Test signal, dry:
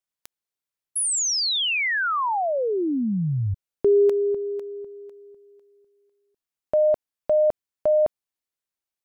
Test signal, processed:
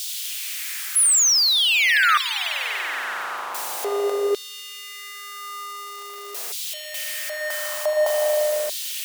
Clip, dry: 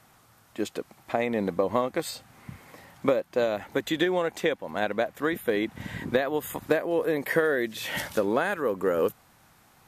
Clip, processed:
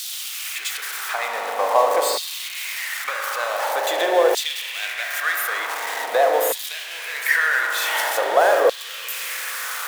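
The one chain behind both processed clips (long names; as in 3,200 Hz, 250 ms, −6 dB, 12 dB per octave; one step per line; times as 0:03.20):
converter with a step at zero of −27.5 dBFS
spring reverb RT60 3.8 s, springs 38 ms, chirp 45 ms, DRR 1 dB
dynamic equaliser 820 Hz, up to +4 dB, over −30 dBFS, Q 1.1
auto-filter high-pass saw down 0.46 Hz 480–3,800 Hz
bass and treble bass −14 dB, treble +5 dB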